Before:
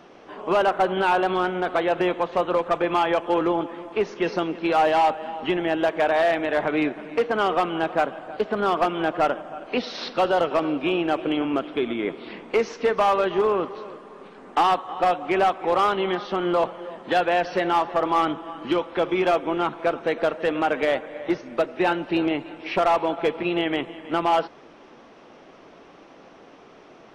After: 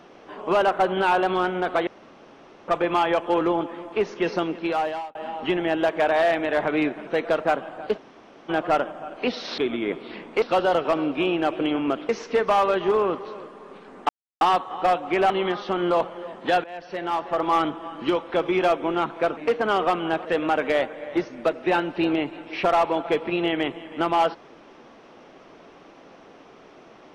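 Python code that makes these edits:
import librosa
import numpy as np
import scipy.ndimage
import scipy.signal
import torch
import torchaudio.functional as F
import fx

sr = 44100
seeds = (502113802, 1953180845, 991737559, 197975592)

y = fx.edit(x, sr, fx.room_tone_fill(start_s=1.87, length_s=0.81),
    fx.fade_out_span(start_s=4.51, length_s=0.64),
    fx.swap(start_s=7.07, length_s=0.88, other_s=20.0, other_length_s=0.38),
    fx.room_tone_fill(start_s=8.48, length_s=0.51, crossfade_s=0.02),
    fx.move(start_s=11.75, length_s=0.84, to_s=10.08),
    fx.insert_silence(at_s=14.59, length_s=0.32),
    fx.cut(start_s=15.48, length_s=0.45),
    fx.fade_in_from(start_s=17.27, length_s=0.89, floor_db=-23.0), tone=tone)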